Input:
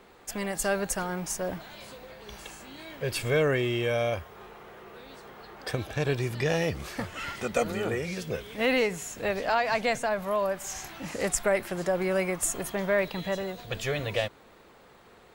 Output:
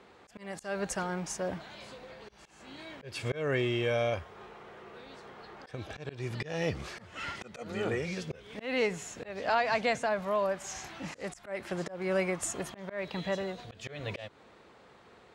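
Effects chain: high-pass 58 Hz; slow attack 247 ms; low-pass 6.9 kHz 12 dB/octave; trim -2 dB

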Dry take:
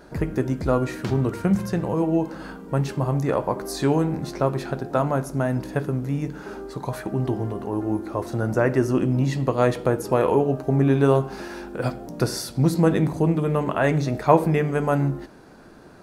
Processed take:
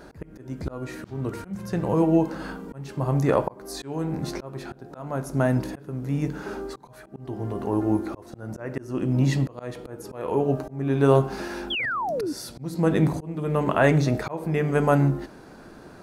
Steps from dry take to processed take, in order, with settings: slow attack 512 ms; painted sound fall, 11.70–12.33 s, 270–3500 Hz -29 dBFS; trim +2 dB

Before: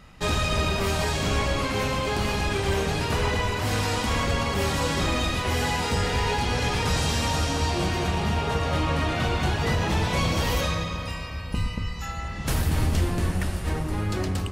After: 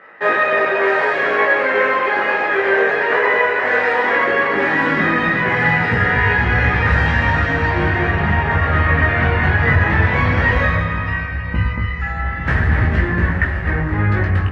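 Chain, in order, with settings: chorus 0.16 Hz, delay 17.5 ms, depth 3.6 ms; on a send at -15.5 dB: reverberation, pre-delay 3 ms; on the sum: high-pass sweep 460 Hz -> 73 Hz, 3.97–6.62 s; resonant low-pass 1.8 kHz, resonance Q 5.9; trim +8 dB; Opus 32 kbps 48 kHz

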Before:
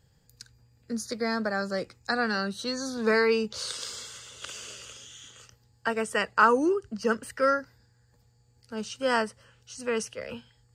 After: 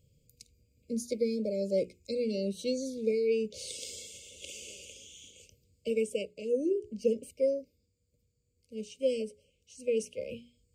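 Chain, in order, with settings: peaking EQ 4.4 kHz -7.5 dB 0.98 oct; hum notches 60/120/180/240/300/360/420 Hz; dynamic bell 560 Hz, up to +6 dB, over -39 dBFS, Q 0.79; gain riding within 5 dB 0.5 s; brick-wall FIR band-stop 620–2100 Hz; trim -5.5 dB

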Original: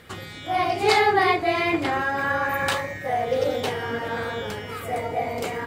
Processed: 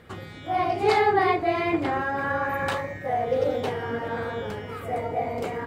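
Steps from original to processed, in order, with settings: treble shelf 2.1 kHz -11 dB

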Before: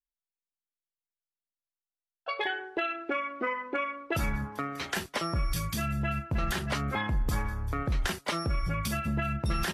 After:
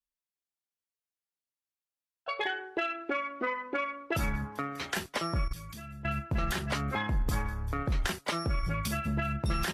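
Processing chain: 5.44–6.05 s: level held to a coarse grid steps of 14 dB; Chebyshev shaper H 3 -25 dB, 6 -44 dB, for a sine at -20 dBFS

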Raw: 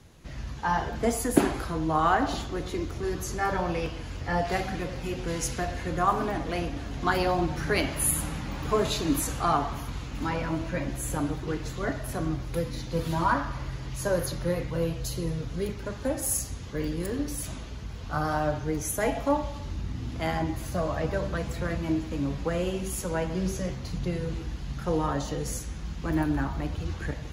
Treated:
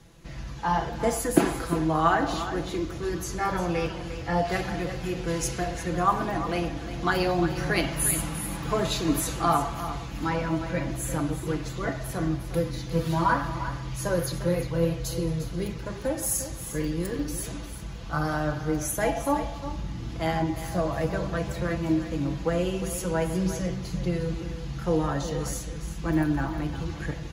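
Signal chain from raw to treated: comb 6 ms, depth 47%; delay 352 ms -11.5 dB

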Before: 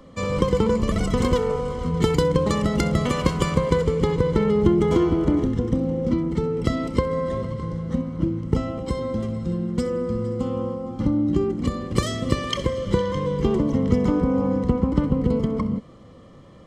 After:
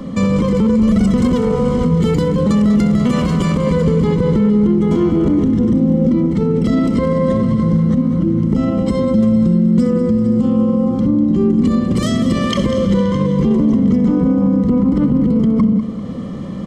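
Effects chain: peaking EQ 210 Hz +14.5 dB 0.84 oct; in parallel at +1 dB: compression, threshold -29 dBFS, peak gain reduction 23 dB; on the sum: peak limiter -13.5 dBFS, peak gain reduction 16.5 dB; reverse; upward compressor, threshold -28 dBFS; reverse; feedback delay 196 ms, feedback 55%, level -12 dB; trim +6 dB

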